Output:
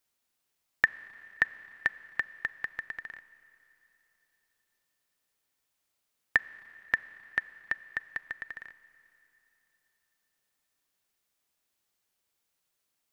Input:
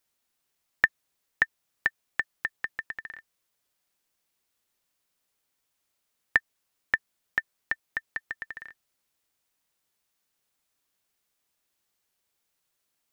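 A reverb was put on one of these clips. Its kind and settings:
four-comb reverb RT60 3.4 s, combs from 29 ms, DRR 17 dB
level −2 dB

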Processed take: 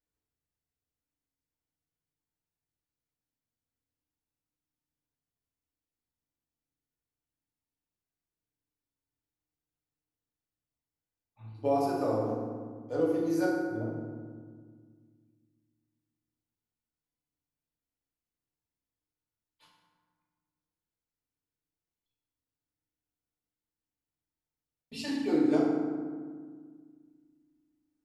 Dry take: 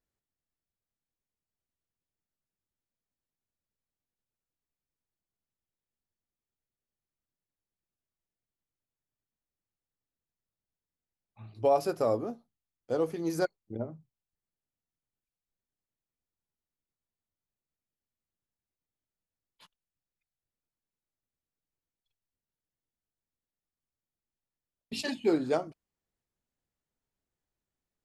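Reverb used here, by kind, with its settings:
feedback delay network reverb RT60 1.7 s, low-frequency decay 1.55×, high-frequency decay 0.5×, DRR −6 dB
level −8.5 dB

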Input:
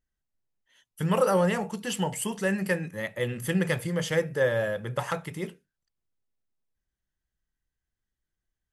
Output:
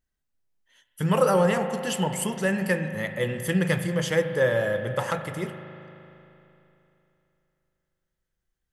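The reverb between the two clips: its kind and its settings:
spring reverb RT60 3.1 s, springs 38 ms, chirp 55 ms, DRR 8 dB
level +2 dB

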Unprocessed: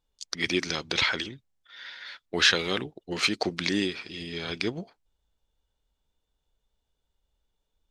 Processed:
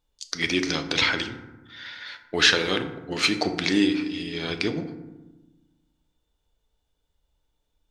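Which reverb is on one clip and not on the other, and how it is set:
feedback delay network reverb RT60 1.1 s, low-frequency decay 1.5×, high-frequency decay 0.45×, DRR 6.5 dB
level +2.5 dB

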